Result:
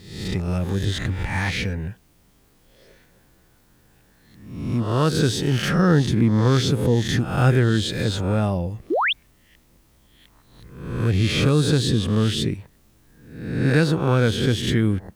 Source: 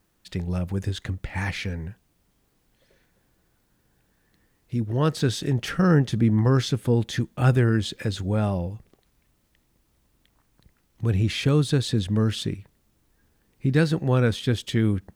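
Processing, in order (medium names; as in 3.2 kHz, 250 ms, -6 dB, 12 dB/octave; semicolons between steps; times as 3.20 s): reverse spectral sustain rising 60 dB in 0.71 s; in parallel at +2 dB: compression, threshold -35 dBFS, peak gain reduction 20 dB; on the sum: painted sound rise, 8.90–9.13 s, 280–3800 Hz -20 dBFS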